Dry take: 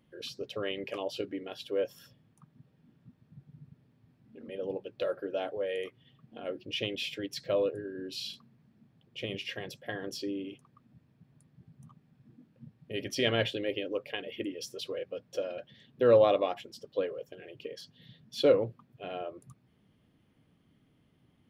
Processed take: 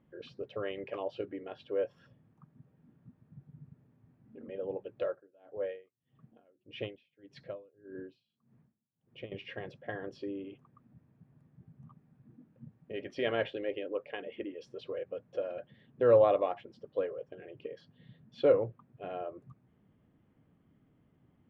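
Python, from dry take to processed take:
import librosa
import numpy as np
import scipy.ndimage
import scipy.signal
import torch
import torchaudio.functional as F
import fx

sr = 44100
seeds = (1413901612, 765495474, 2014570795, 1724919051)

y = fx.tremolo_db(x, sr, hz=1.7, depth_db=32, at=(5.05, 9.32))
y = fx.peak_eq(y, sr, hz=110.0, db=-10.0, octaves=0.84, at=(12.78, 14.67))
y = scipy.signal.sosfilt(scipy.signal.butter(2, 1700.0, 'lowpass', fs=sr, output='sos'), y)
y = fx.dynamic_eq(y, sr, hz=230.0, q=1.2, threshold_db=-46.0, ratio=4.0, max_db=-6)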